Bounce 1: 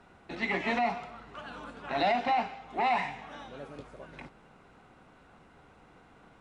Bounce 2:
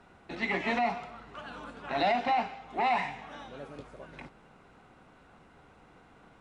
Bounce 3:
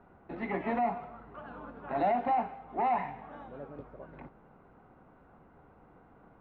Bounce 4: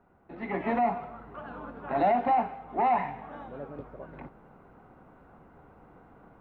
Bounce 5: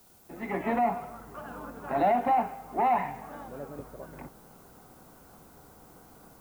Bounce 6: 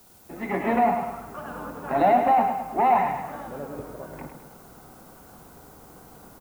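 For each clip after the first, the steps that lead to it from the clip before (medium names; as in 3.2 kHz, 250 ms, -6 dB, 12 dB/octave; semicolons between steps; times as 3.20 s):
no audible change
low-pass 1.2 kHz 12 dB/octave
level rider gain up to 9.5 dB; trim -5.5 dB
added noise blue -60 dBFS
feedback delay 105 ms, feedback 46%, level -7 dB; trim +4.5 dB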